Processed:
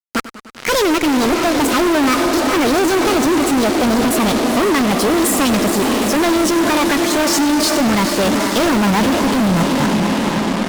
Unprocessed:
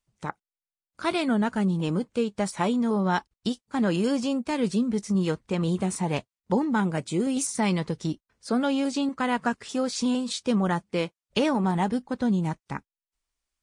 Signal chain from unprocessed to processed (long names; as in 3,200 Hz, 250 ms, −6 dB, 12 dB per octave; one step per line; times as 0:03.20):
gliding playback speed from 154% → 101%
low-pass filter 9,100 Hz
low-shelf EQ 73 Hz −6.5 dB
feedback delay with all-pass diffusion 461 ms, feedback 68%, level −11 dB
fuzz pedal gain 43 dB, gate −41 dBFS
feedback echo with a swinging delay time 100 ms, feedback 71%, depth 123 cents, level −15 dB